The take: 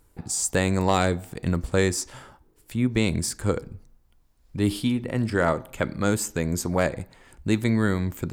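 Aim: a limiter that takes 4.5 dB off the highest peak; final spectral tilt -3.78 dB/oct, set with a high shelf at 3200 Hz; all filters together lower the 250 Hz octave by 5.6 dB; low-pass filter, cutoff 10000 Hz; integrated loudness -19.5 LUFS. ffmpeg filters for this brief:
-af "lowpass=10k,equalizer=f=250:t=o:g=-7.5,highshelf=f=3.2k:g=5.5,volume=7.5dB,alimiter=limit=-5dB:level=0:latency=1"

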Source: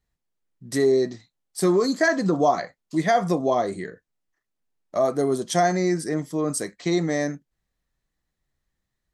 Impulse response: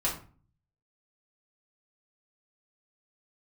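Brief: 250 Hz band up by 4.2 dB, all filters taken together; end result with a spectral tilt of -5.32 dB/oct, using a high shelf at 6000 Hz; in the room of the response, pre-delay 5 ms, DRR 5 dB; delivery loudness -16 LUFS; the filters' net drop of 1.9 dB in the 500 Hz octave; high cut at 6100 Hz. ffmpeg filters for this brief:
-filter_complex "[0:a]lowpass=6.1k,equalizer=f=250:t=o:g=8.5,equalizer=f=500:t=o:g=-6.5,highshelf=f=6k:g=-4,asplit=2[a][b];[1:a]atrim=start_sample=2205,adelay=5[c];[b][c]afir=irnorm=-1:irlink=0,volume=-12.5dB[d];[a][d]amix=inputs=2:normalize=0,volume=5dB"

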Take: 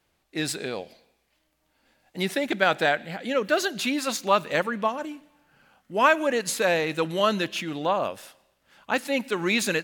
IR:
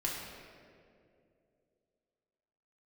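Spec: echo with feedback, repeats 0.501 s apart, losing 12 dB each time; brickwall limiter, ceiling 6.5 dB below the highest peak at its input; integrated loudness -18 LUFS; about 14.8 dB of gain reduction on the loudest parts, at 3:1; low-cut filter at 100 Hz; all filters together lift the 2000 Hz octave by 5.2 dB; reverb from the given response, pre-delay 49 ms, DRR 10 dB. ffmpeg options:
-filter_complex "[0:a]highpass=100,equalizer=f=2k:t=o:g=7,acompressor=threshold=-32dB:ratio=3,alimiter=limit=-22dB:level=0:latency=1,aecho=1:1:501|1002|1503:0.251|0.0628|0.0157,asplit=2[a][b];[1:a]atrim=start_sample=2205,adelay=49[c];[b][c]afir=irnorm=-1:irlink=0,volume=-14dB[d];[a][d]amix=inputs=2:normalize=0,volume=16dB"

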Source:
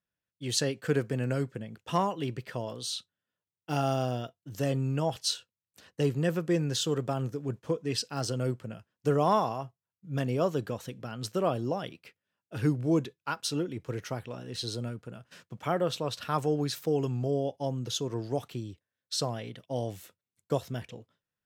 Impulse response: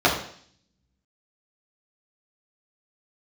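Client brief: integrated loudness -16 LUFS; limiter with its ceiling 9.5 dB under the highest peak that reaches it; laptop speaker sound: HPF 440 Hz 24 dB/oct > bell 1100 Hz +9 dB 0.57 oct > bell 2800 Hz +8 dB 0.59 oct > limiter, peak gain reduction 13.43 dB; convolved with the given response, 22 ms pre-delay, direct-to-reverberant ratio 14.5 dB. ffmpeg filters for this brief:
-filter_complex "[0:a]alimiter=limit=-23dB:level=0:latency=1,asplit=2[a][b];[1:a]atrim=start_sample=2205,adelay=22[c];[b][c]afir=irnorm=-1:irlink=0,volume=-34.5dB[d];[a][d]amix=inputs=2:normalize=0,highpass=f=440:w=0.5412,highpass=f=440:w=1.3066,equalizer=f=1.1k:t=o:w=0.57:g=9,equalizer=f=2.8k:t=o:w=0.59:g=8,volume=25dB,alimiter=limit=-5.5dB:level=0:latency=1"

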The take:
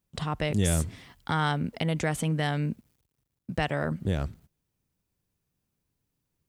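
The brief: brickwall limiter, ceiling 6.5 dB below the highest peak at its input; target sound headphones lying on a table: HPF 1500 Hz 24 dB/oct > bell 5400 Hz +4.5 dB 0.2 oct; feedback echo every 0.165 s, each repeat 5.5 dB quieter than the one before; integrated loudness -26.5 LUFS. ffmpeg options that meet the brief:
-af "alimiter=limit=-20dB:level=0:latency=1,highpass=f=1.5k:w=0.5412,highpass=f=1.5k:w=1.3066,equalizer=f=5.4k:t=o:w=0.2:g=4.5,aecho=1:1:165|330|495|660|825|990|1155:0.531|0.281|0.149|0.079|0.0419|0.0222|0.0118,volume=11.5dB"

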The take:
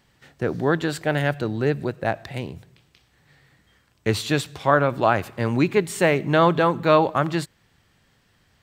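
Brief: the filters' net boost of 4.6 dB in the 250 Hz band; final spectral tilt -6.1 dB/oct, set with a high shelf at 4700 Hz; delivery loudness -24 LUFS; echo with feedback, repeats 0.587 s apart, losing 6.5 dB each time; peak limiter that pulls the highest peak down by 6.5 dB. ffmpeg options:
-af "equalizer=f=250:t=o:g=6.5,highshelf=f=4.7k:g=-6,alimiter=limit=-8dB:level=0:latency=1,aecho=1:1:587|1174|1761|2348|2935|3522:0.473|0.222|0.105|0.0491|0.0231|0.0109,volume=-2.5dB"

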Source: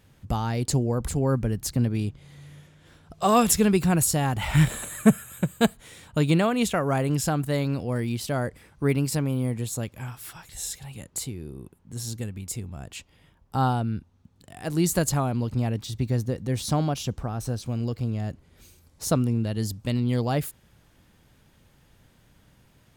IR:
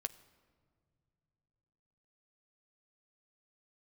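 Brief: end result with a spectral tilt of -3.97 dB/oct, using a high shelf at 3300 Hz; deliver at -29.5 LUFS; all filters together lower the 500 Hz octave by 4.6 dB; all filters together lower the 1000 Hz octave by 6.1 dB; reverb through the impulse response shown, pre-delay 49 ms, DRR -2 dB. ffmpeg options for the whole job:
-filter_complex "[0:a]equalizer=f=500:t=o:g=-4,equalizer=f=1k:t=o:g=-8,highshelf=f=3.3k:g=9,asplit=2[a][b];[1:a]atrim=start_sample=2205,adelay=49[c];[b][c]afir=irnorm=-1:irlink=0,volume=3.5dB[d];[a][d]amix=inputs=2:normalize=0,volume=-9dB"

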